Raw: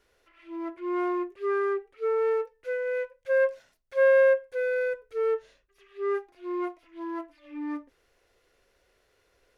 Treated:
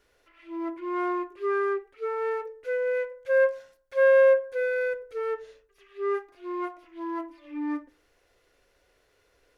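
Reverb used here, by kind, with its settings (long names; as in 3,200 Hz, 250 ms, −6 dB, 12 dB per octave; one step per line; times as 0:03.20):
feedback delay network reverb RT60 0.54 s, low-frequency decay 0.8×, high-frequency decay 0.35×, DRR 12 dB
level +1 dB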